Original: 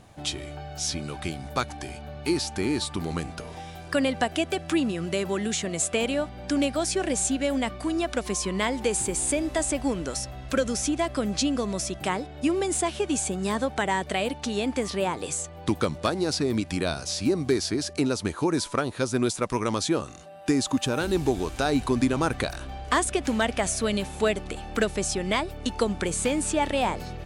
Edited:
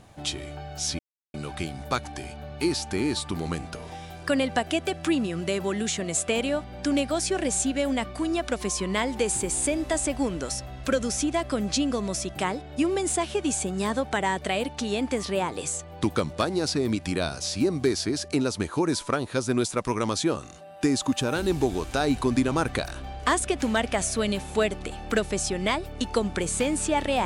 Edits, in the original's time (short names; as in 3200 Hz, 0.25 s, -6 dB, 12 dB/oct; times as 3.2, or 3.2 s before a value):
0.99 insert silence 0.35 s